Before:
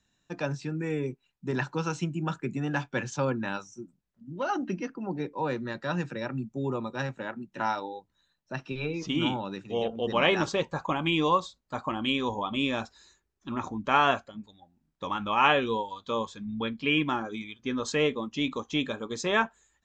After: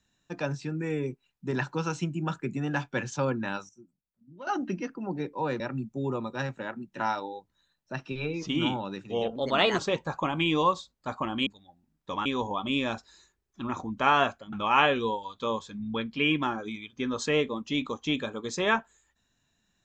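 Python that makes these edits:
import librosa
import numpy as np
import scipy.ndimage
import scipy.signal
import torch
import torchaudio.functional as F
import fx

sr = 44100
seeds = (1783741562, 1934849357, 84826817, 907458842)

y = fx.edit(x, sr, fx.clip_gain(start_s=3.69, length_s=0.78, db=-11.5),
    fx.cut(start_s=5.6, length_s=0.6),
    fx.speed_span(start_s=9.96, length_s=0.49, speed=1.15),
    fx.move(start_s=14.4, length_s=0.79, to_s=12.13), tone=tone)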